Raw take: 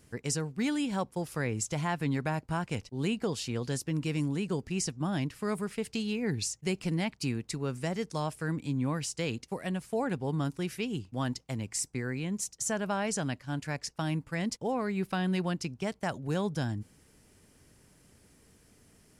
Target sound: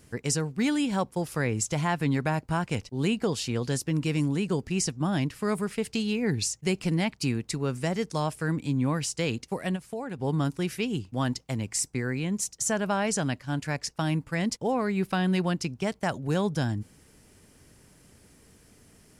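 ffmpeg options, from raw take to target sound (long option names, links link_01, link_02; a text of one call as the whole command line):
ffmpeg -i in.wav -filter_complex "[0:a]asplit=3[link_01][link_02][link_03];[link_01]afade=type=out:start_time=9.75:duration=0.02[link_04];[link_02]acompressor=threshold=-43dB:ratio=2,afade=type=in:start_time=9.75:duration=0.02,afade=type=out:start_time=10.18:duration=0.02[link_05];[link_03]afade=type=in:start_time=10.18:duration=0.02[link_06];[link_04][link_05][link_06]amix=inputs=3:normalize=0,volume=4.5dB" out.wav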